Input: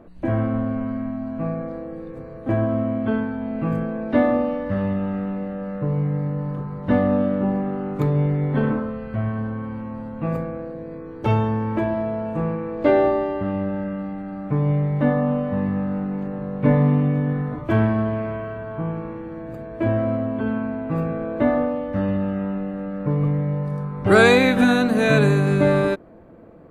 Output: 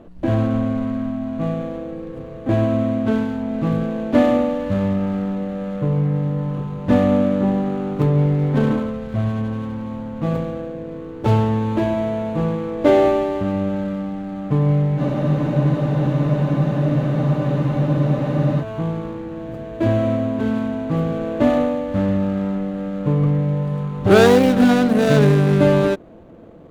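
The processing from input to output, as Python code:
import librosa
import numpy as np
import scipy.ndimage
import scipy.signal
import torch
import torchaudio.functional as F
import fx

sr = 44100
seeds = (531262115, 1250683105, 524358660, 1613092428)

y = scipy.ndimage.median_filter(x, 25, mode='constant')
y = fx.spec_freeze(y, sr, seeds[0], at_s=15.0, hold_s=3.62)
y = y * librosa.db_to_amplitude(3.5)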